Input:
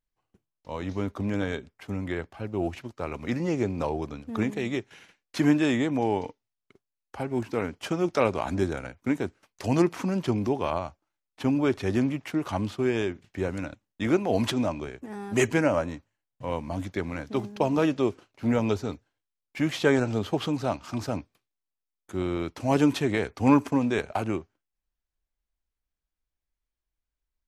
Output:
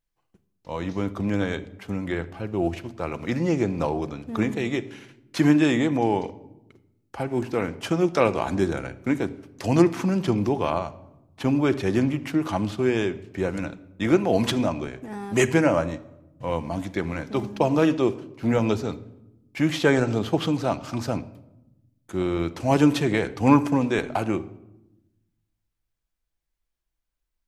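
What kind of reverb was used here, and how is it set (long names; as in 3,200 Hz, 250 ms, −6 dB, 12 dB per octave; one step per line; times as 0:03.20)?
rectangular room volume 3,400 cubic metres, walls furnished, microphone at 0.75 metres
level +3 dB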